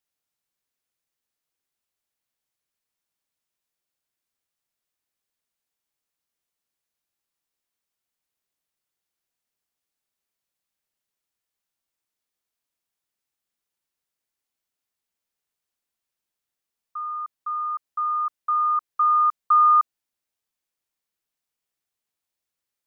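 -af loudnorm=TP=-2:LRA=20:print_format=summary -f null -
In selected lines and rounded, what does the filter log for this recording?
Input Integrated:    -21.7 LUFS
Input True Peak:     -12.1 dBTP
Input LRA:            12.7 LU
Input Threshold:     -32.0 LUFS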